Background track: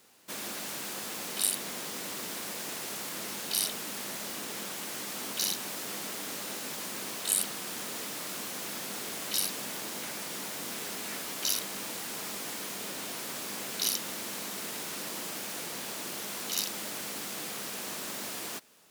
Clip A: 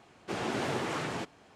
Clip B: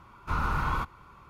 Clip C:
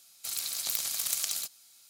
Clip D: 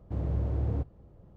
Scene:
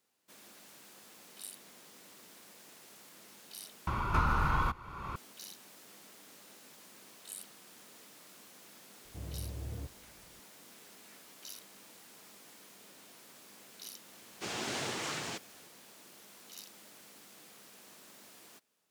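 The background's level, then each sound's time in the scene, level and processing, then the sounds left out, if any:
background track −18 dB
0:03.87: overwrite with B −1 dB + multiband upward and downward compressor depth 100%
0:09.04: mix in D −12 dB
0:14.13: mix in A −8 dB + parametric band 6,700 Hz +14 dB 2.8 octaves
not used: C

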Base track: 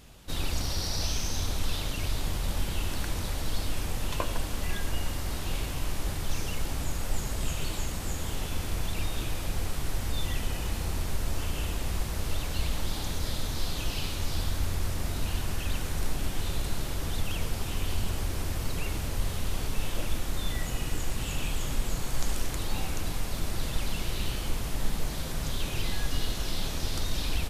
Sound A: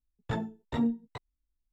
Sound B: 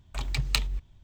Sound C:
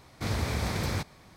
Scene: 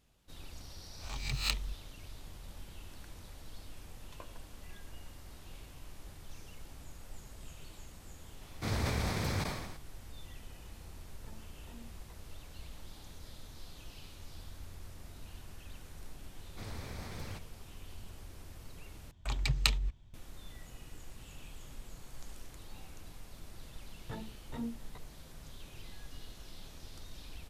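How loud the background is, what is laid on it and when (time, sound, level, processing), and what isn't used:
base track −18.5 dB
0:00.95: mix in B −9 dB + peak hold with a rise ahead of every peak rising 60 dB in 0.41 s
0:08.41: mix in C −4 dB + level that may fall only so fast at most 50 dB per second
0:10.95: mix in A −15.5 dB + downward compressor 2.5 to 1, threshold −42 dBFS
0:16.36: mix in C −14.5 dB
0:19.11: overwrite with B −2.5 dB + downsampling to 32,000 Hz
0:23.80: mix in A −11.5 dB

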